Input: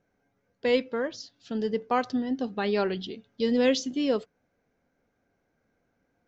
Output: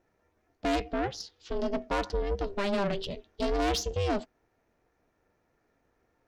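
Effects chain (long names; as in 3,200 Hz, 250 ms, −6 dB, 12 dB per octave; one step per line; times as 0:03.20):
tube saturation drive 27 dB, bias 0.35
ring modulation 200 Hz
level +5.5 dB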